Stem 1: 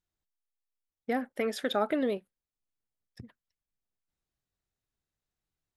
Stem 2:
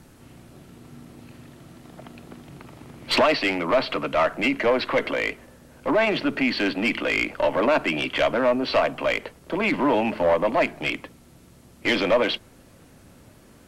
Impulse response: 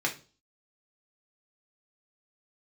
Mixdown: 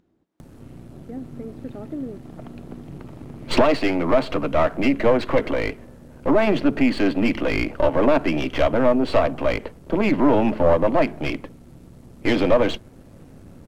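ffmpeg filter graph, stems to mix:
-filter_complex "[0:a]bandpass=f=280:t=q:w=2.3:csg=0,volume=1.12[s0];[1:a]aeval=exprs='if(lt(val(0),0),0.447*val(0),val(0))':c=same,tiltshelf=f=850:g=6.5,adelay=400,volume=1.41[s1];[s0][s1]amix=inputs=2:normalize=0,acompressor=mode=upward:threshold=0.01:ratio=2.5"

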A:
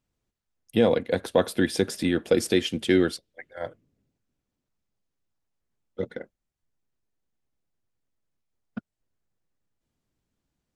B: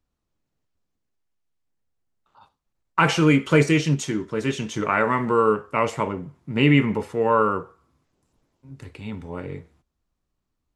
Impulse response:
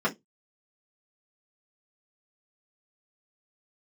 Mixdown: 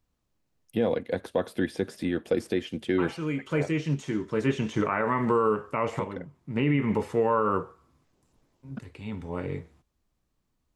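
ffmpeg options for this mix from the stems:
-filter_complex "[0:a]volume=0.631,asplit=2[s0][s1];[1:a]volume=1.12[s2];[s1]apad=whole_len=474467[s3];[s2][s3]sidechaincompress=threshold=0.0112:ratio=4:attack=11:release=1090[s4];[s0][s4]amix=inputs=2:normalize=0,acrossover=split=2500[s5][s6];[s6]acompressor=threshold=0.00501:ratio=4:attack=1:release=60[s7];[s5][s7]amix=inputs=2:normalize=0,bandreject=f=1400:w=28,alimiter=limit=0.188:level=0:latency=1:release=162"

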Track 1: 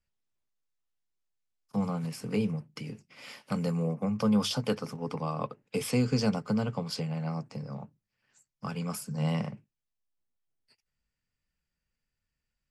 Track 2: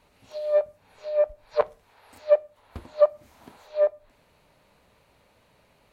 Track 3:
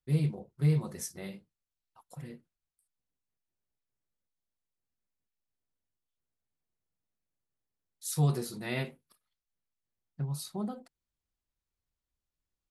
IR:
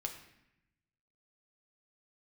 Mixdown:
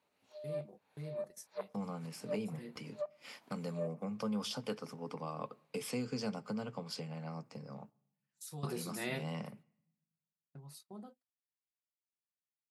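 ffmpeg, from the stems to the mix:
-filter_complex "[0:a]volume=0.562,asplit=3[s0][s1][s2];[s1]volume=0.106[s3];[1:a]acompressor=threshold=0.0794:ratio=2.5,volume=0.158[s4];[2:a]adelay=350,volume=1.26[s5];[s2]apad=whole_len=575593[s6];[s5][s6]sidechaingate=range=0.2:threshold=0.001:ratio=16:detection=peak[s7];[s0][s7]amix=inputs=2:normalize=0,agate=range=0.0631:threshold=0.00251:ratio=16:detection=peak,acompressor=threshold=0.00631:ratio=1.5,volume=1[s8];[3:a]atrim=start_sample=2205[s9];[s3][s9]afir=irnorm=-1:irlink=0[s10];[s4][s8][s10]amix=inputs=3:normalize=0,highpass=180"

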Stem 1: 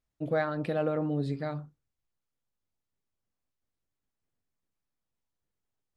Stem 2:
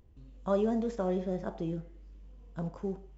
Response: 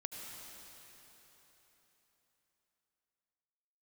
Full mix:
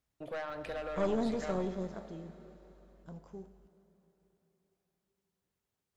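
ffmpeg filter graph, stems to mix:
-filter_complex "[0:a]highpass=51,acrossover=split=550|1200[s0][s1][s2];[s0]acompressor=threshold=0.00158:ratio=4[s3];[s1]acompressor=threshold=0.0141:ratio=4[s4];[s2]acompressor=threshold=0.00562:ratio=4[s5];[s3][s4][s5]amix=inputs=3:normalize=0,asoftclip=type=tanh:threshold=0.0158,volume=1.19,asplit=2[s6][s7];[s7]volume=0.668[s8];[1:a]highshelf=f=5800:g=11.5,adelay=500,volume=0.794,afade=t=out:st=1.51:d=0.67:silence=0.334965,asplit=2[s9][s10];[s10]volume=0.376[s11];[2:a]atrim=start_sample=2205[s12];[s8][s11]amix=inputs=2:normalize=0[s13];[s13][s12]afir=irnorm=-1:irlink=0[s14];[s6][s9][s14]amix=inputs=3:normalize=0,aeval=exprs='(tanh(15.8*val(0)+0.5)-tanh(0.5))/15.8':c=same"

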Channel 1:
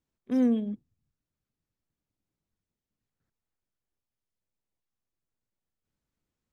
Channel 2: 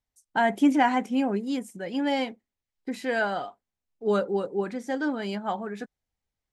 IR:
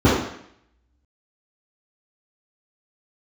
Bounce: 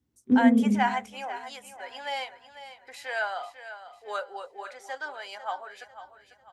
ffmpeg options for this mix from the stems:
-filter_complex "[0:a]acompressor=threshold=0.0316:ratio=6,volume=0.596,asplit=3[s0][s1][s2];[s1]volume=0.126[s3];[s2]volume=0.211[s4];[1:a]highpass=f=670:w=0.5412,highpass=f=670:w=1.3066,volume=0.841,asplit=2[s5][s6];[s6]volume=0.237[s7];[2:a]atrim=start_sample=2205[s8];[s3][s8]afir=irnorm=-1:irlink=0[s9];[s4][s7]amix=inputs=2:normalize=0,aecho=0:1:496|992|1488|1984|2480:1|0.38|0.144|0.0549|0.0209[s10];[s0][s5][s9][s10]amix=inputs=4:normalize=0"

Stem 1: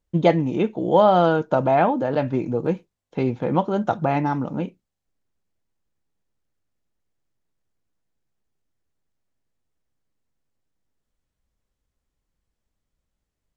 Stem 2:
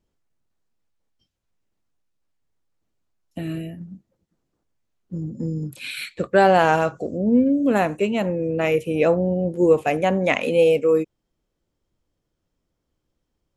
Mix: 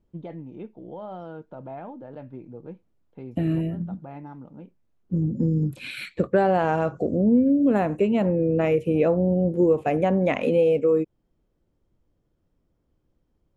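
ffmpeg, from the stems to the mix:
-filter_complex "[0:a]lowpass=3600,alimiter=limit=0.316:level=0:latency=1:release=30,volume=0.112[s0];[1:a]highshelf=f=3500:g=-10,acompressor=threshold=0.0631:ratio=2.5,volume=1.41,asplit=2[s1][s2];[s2]apad=whole_len=598424[s3];[s0][s3]sidechaincompress=threshold=0.0224:ratio=8:attack=16:release=353[s4];[s4][s1]amix=inputs=2:normalize=0,tiltshelf=f=670:g=3.5"

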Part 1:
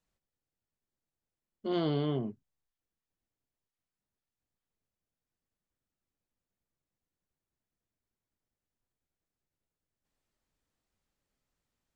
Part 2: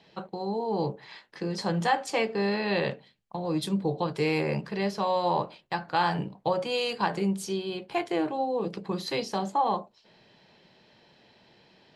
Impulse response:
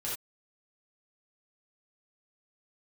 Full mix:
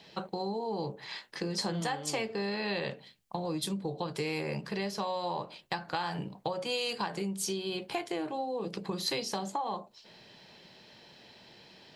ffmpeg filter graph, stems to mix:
-filter_complex "[0:a]volume=0.447[s0];[1:a]acompressor=threshold=0.02:ratio=6,volume=1.26,asplit=2[s1][s2];[s2]apad=whole_len=527005[s3];[s0][s3]sidechaincompress=threshold=0.0141:ratio=8:attack=42:release=754[s4];[s4][s1]amix=inputs=2:normalize=0,highshelf=f=4000:g=9.5"

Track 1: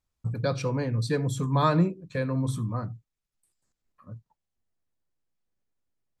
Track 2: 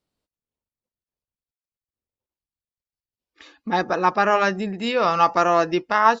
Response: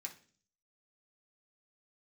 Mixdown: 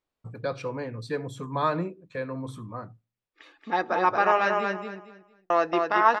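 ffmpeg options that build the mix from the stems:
-filter_complex "[0:a]volume=0.891,asplit=2[s0][s1];[s1]volume=0.0891[s2];[1:a]volume=0.631,asplit=3[s3][s4][s5];[s3]atrim=end=4.78,asetpts=PTS-STARTPTS,afade=t=out:st=4.776:d=0.004:c=hsin[s6];[s4]atrim=start=4.78:end=5.5,asetpts=PTS-STARTPTS,volume=0[s7];[s5]atrim=start=5.5,asetpts=PTS-STARTPTS,afade=t=in:d=0.004:c=hsin[s8];[s6][s7][s8]concat=n=3:v=0:a=1,asplit=3[s9][s10][s11];[s10]volume=0.266[s12];[s11]volume=0.668[s13];[2:a]atrim=start_sample=2205[s14];[s2][s12]amix=inputs=2:normalize=0[s15];[s15][s14]afir=irnorm=-1:irlink=0[s16];[s13]aecho=0:1:228|456|684|912:1|0.25|0.0625|0.0156[s17];[s0][s9][s16][s17]amix=inputs=4:normalize=0,bass=f=250:g=-11,treble=f=4000:g=-11"

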